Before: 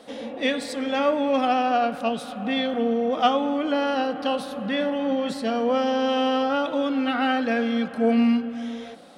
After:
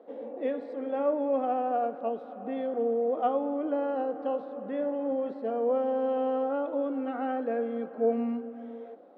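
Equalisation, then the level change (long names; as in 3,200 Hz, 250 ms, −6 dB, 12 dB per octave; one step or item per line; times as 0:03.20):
four-pole ladder band-pass 480 Hz, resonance 35%
+6.0 dB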